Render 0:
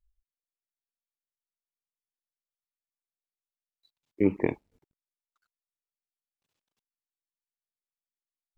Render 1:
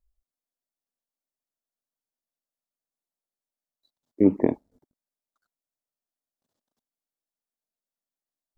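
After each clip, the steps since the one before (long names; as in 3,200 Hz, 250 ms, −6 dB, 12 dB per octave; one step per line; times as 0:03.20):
graphic EQ with 15 bands 250 Hz +9 dB, 630 Hz +8 dB, 2,500 Hz −12 dB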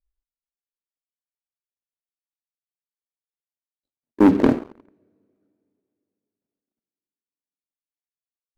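running median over 41 samples
coupled-rooms reverb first 0.68 s, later 3.1 s, from −18 dB, DRR 13 dB
leveller curve on the samples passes 3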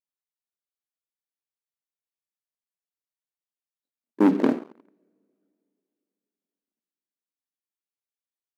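linear-phase brick-wall high-pass 150 Hz
level −4.5 dB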